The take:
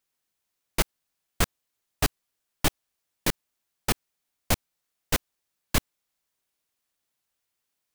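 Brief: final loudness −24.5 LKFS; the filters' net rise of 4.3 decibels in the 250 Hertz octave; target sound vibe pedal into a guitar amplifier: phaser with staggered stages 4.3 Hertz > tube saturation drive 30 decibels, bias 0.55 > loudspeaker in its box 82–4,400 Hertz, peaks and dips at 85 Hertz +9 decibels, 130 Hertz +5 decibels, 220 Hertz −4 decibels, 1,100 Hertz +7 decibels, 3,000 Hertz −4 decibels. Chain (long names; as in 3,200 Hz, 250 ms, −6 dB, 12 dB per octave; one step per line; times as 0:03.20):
parametric band 250 Hz +7 dB
phaser with staggered stages 4.3 Hz
tube saturation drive 30 dB, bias 0.55
loudspeaker in its box 82–4,400 Hz, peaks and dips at 85 Hz +9 dB, 130 Hz +5 dB, 220 Hz −4 dB, 1,100 Hz +7 dB, 3,000 Hz −4 dB
level +19 dB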